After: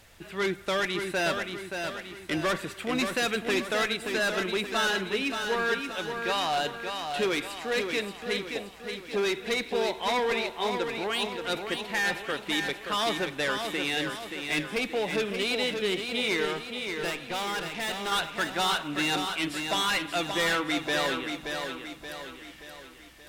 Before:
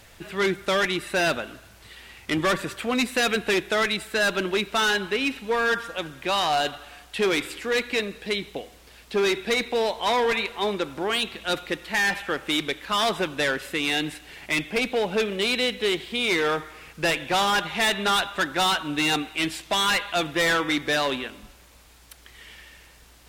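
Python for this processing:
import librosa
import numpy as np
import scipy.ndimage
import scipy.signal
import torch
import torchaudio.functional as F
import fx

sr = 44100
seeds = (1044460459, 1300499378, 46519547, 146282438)

y = fx.tube_stage(x, sr, drive_db=24.0, bias=0.6, at=(16.45, 18.12))
y = fx.echo_feedback(y, sr, ms=577, feedback_pct=48, wet_db=-6.0)
y = F.gain(torch.from_numpy(y), -5.0).numpy()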